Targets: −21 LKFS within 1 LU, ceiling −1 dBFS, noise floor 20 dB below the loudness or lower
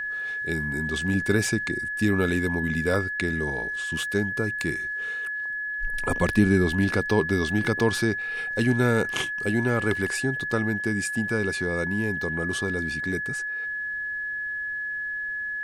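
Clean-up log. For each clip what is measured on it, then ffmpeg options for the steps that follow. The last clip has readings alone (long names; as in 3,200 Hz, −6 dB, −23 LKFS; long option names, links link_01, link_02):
interfering tone 1,700 Hz; level of the tone −28 dBFS; integrated loudness −25.5 LKFS; sample peak −8.0 dBFS; target loudness −21.0 LKFS
→ -af "bandreject=frequency=1700:width=30"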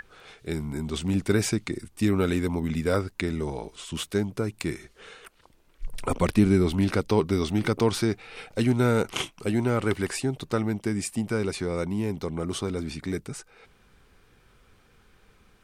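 interfering tone none found; integrated loudness −27.0 LKFS; sample peak −8.5 dBFS; target loudness −21.0 LKFS
→ -af "volume=6dB"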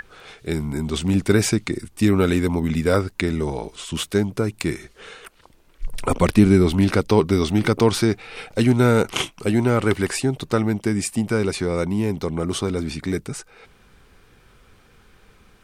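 integrated loudness −21.0 LKFS; sample peak −2.5 dBFS; background noise floor −54 dBFS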